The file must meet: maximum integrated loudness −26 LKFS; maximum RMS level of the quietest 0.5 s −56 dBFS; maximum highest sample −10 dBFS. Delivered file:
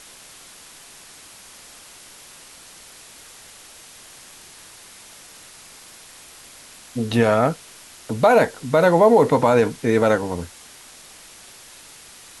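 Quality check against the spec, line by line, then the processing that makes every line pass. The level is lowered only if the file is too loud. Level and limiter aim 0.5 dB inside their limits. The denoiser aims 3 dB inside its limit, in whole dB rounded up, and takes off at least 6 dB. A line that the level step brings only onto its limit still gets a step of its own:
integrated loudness −18.0 LKFS: out of spec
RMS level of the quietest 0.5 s −45 dBFS: out of spec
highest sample −5.0 dBFS: out of spec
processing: broadband denoise 6 dB, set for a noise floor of −45 dBFS
level −8.5 dB

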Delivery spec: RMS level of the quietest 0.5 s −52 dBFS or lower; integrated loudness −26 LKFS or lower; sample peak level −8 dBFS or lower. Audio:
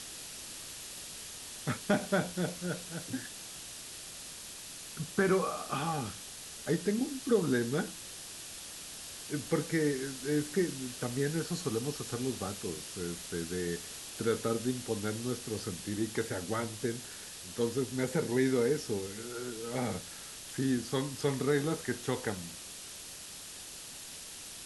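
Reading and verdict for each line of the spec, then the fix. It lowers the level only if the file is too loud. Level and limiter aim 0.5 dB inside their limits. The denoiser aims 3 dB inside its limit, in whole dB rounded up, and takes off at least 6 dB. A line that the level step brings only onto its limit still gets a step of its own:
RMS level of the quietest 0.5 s −46 dBFS: out of spec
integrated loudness −35.0 LKFS: in spec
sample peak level −14.0 dBFS: in spec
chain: broadband denoise 9 dB, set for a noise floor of −46 dBFS

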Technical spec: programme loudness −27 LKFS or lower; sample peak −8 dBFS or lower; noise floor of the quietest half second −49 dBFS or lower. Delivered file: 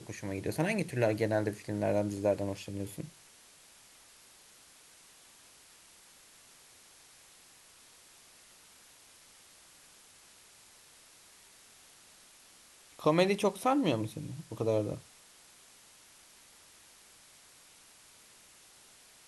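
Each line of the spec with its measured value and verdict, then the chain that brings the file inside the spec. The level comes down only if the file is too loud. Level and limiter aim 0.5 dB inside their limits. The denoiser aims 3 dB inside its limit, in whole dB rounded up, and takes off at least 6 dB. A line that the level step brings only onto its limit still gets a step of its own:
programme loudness −32.0 LKFS: in spec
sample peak −12.0 dBFS: in spec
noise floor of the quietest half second −59 dBFS: in spec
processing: no processing needed

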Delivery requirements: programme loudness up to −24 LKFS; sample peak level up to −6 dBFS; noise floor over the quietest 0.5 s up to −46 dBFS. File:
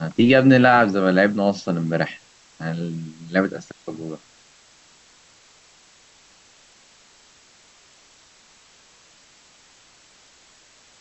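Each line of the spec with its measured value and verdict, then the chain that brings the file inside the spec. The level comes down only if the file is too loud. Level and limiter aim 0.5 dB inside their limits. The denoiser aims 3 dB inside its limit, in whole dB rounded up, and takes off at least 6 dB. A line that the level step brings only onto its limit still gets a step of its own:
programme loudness −19.0 LKFS: out of spec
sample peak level −2.5 dBFS: out of spec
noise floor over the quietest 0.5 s −53 dBFS: in spec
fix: level −5.5 dB

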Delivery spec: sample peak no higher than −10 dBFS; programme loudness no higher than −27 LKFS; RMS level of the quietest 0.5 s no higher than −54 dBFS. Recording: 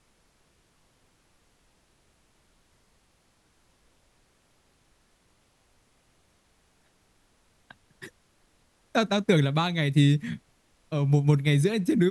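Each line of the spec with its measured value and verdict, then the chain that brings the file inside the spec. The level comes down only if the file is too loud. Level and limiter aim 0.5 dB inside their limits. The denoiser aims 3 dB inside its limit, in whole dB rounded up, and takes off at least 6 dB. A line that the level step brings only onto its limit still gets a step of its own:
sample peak −8.5 dBFS: out of spec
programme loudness −24.5 LKFS: out of spec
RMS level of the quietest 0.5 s −66 dBFS: in spec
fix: level −3 dB

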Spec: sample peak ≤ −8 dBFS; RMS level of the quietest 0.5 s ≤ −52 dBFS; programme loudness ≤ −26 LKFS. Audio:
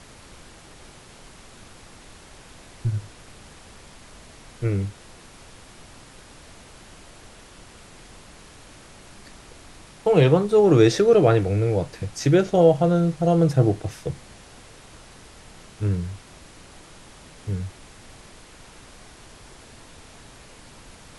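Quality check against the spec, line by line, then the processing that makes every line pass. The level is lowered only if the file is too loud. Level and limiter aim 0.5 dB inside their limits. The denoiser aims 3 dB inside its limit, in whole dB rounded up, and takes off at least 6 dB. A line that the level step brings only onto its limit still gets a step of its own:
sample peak −4.5 dBFS: out of spec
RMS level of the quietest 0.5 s −46 dBFS: out of spec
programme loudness −21.0 LKFS: out of spec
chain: broadband denoise 6 dB, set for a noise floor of −46 dBFS
level −5.5 dB

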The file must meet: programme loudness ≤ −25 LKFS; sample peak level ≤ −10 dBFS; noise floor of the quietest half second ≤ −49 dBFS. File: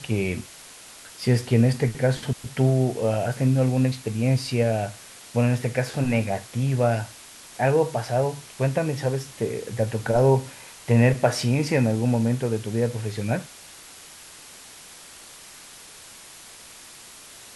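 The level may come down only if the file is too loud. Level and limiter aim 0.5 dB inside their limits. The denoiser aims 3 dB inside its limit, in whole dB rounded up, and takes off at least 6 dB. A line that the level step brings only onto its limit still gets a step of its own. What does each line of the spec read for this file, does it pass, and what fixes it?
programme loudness −24.0 LKFS: out of spec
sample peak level −5.5 dBFS: out of spec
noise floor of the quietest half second −45 dBFS: out of spec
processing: broadband denoise 6 dB, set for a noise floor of −45 dBFS
level −1.5 dB
brickwall limiter −10.5 dBFS

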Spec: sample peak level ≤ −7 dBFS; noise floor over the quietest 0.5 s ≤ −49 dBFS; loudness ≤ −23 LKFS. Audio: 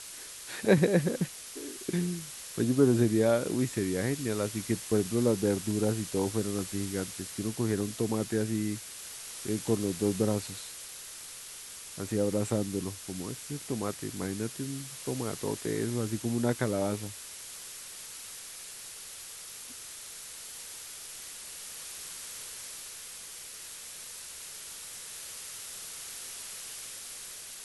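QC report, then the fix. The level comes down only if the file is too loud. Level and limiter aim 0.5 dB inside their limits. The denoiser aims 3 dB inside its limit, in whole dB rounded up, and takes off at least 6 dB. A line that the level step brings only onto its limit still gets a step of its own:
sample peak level −9.0 dBFS: in spec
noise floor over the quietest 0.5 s −45 dBFS: out of spec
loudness −33.0 LKFS: in spec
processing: broadband denoise 7 dB, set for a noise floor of −45 dBFS

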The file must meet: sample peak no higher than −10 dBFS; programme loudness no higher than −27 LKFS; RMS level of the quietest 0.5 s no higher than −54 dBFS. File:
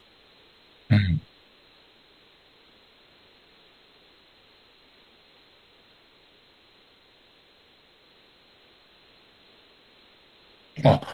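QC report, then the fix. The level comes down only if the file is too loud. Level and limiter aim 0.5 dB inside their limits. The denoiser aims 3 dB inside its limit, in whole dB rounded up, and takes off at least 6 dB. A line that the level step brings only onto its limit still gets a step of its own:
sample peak −5.5 dBFS: out of spec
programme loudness −23.5 LKFS: out of spec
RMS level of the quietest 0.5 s −58 dBFS: in spec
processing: level −4 dB
brickwall limiter −10.5 dBFS

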